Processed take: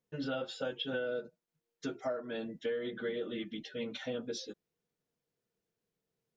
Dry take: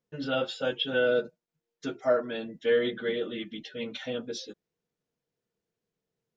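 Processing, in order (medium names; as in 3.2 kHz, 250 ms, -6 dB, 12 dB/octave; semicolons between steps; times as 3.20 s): dynamic bell 2.9 kHz, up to -4 dB, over -46 dBFS, Q 1.1; compression 10:1, threshold -31 dBFS, peak gain reduction 12.5 dB; trim -1.5 dB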